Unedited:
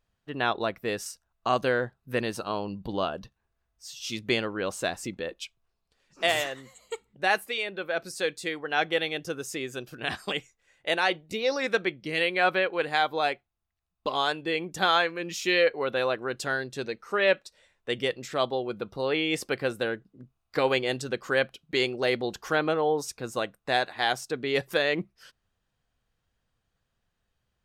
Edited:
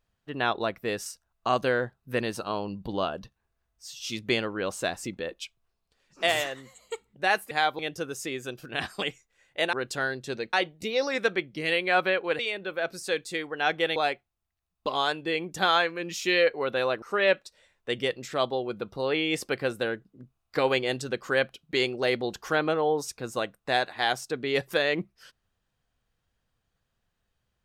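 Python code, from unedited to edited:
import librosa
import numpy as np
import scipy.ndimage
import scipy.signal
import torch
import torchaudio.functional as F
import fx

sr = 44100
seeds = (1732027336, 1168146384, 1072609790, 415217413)

y = fx.edit(x, sr, fx.swap(start_s=7.51, length_s=1.57, other_s=12.88, other_length_s=0.28),
    fx.move(start_s=16.22, length_s=0.8, to_s=11.02), tone=tone)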